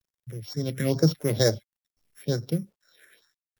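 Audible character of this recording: a buzz of ramps at a fixed pitch in blocks of 8 samples; phasing stages 4, 2.2 Hz, lowest notch 750–2900 Hz; a quantiser's noise floor 12-bit, dither none

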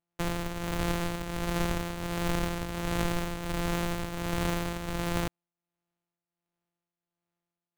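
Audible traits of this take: a buzz of ramps at a fixed pitch in blocks of 256 samples; tremolo triangle 1.4 Hz, depth 65%; aliases and images of a low sample rate 5200 Hz, jitter 20%

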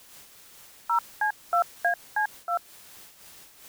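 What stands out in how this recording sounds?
a quantiser's noise floor 8-bit, dither triangular; noise-modulated level

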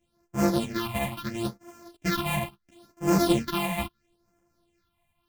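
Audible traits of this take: a buzz of ramps at a fixed pitch in blocks of 128 samples; phasing stages 6, 0.74 Hz, lowest notch 370–3800 Hz; tremolo saw up 4.1 Hz, depth 40%; a shimmering, thickened sound

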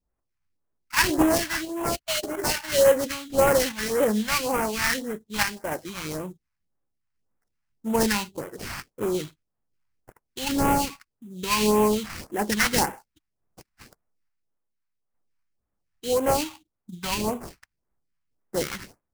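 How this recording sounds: aliases and images of a low sample rate 3600 Hz, jitter 20%; random-step tremolo; phasing stages 2, 1.8 Hz, lowest notch 410–4200 Hz

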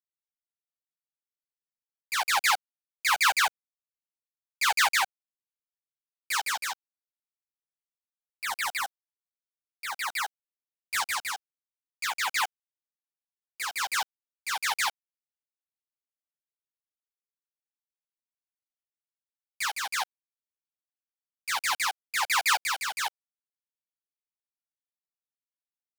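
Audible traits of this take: a quantiser's noise floor 6-bit, dither none; tremolo triangle 1.3 Hz, depth 50%; a shimmering, thickened sound

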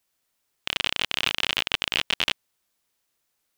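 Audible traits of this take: noise floor -76 dBFS; spectral tilt -0.5 dB/oct

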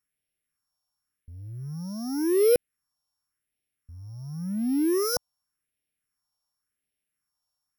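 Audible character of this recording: a buzz of ramps at a fixed pitch in blocks of 8 samples; phasing stages 4, 0.9 Hz, lowest notch 370–1100 Hz

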